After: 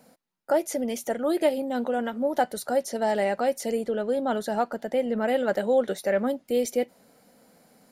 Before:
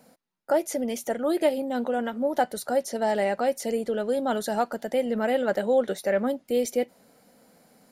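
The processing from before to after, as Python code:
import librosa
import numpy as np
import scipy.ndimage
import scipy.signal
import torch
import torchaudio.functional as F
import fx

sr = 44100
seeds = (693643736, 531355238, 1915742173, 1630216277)

y = fx.high_shelf(x, sr, hz=4000.0, db=-7.0, at=(3.86, 5.28))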